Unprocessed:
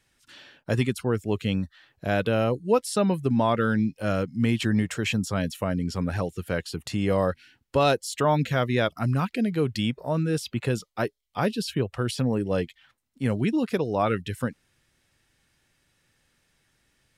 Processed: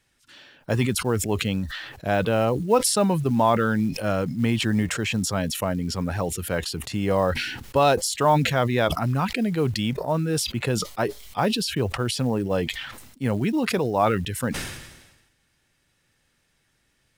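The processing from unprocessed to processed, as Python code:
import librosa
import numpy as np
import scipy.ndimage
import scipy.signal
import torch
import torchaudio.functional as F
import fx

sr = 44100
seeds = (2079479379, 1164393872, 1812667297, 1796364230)

y = fx.dynamic_eq(x, sr, hz=860.0, q=1.7, threshold_db=-40.0, ratio=4.0, max_db=6)
y = fx.quant_float(y, sr, bits=4)
y = fx.sustainer(y, sr, db_per_s=51.0)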